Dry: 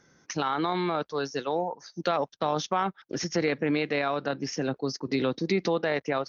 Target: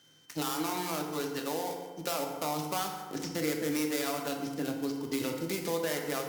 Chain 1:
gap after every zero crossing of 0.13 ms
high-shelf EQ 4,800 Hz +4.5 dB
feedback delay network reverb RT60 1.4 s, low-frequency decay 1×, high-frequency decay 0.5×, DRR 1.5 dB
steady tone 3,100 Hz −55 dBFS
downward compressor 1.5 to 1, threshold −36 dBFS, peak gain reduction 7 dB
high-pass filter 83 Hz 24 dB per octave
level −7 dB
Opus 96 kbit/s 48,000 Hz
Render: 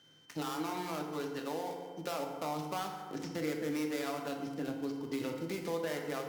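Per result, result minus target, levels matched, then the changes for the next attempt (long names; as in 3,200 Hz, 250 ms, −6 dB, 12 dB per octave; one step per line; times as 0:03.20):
8,000 Hz band −6.0 dB; downward compressor: peak gain reduction +3.5 dB
change: high-shelf EQ 4,800 Hz +15 dB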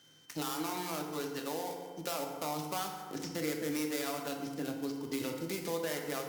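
downward compressor: peak gain reduction +3.5 dB
change: downward compressor 1.5 to 1, threshold −25 dBFS, peak gain reduction 3.5 dB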